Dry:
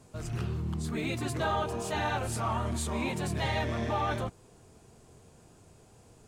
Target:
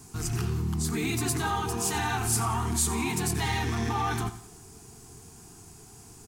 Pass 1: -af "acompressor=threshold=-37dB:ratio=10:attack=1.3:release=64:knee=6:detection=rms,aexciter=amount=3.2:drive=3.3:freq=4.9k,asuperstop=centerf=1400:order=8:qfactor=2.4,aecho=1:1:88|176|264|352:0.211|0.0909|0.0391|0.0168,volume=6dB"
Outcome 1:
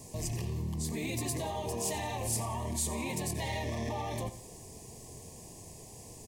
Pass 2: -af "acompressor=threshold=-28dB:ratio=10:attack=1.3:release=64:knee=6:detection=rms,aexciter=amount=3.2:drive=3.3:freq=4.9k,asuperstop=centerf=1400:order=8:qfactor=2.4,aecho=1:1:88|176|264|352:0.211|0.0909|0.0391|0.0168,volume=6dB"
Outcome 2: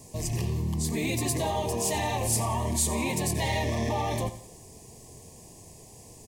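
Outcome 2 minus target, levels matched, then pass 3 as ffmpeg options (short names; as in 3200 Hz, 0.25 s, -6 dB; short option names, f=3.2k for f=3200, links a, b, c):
500 Hz band +5.0 dB
-af "acompressor=threshold=-28dB:ratio=10:attack=1.3:release=64:knee=6:detection=rms,aexciter=amount=3.2:drive=3.3:freq=4.9k,asuperstop=centerf=560:order=8:qfactor=2.4,aecho=1:1:88|176|264|352:0.211|0.0909|0.0391|0.0168,volume=6dB"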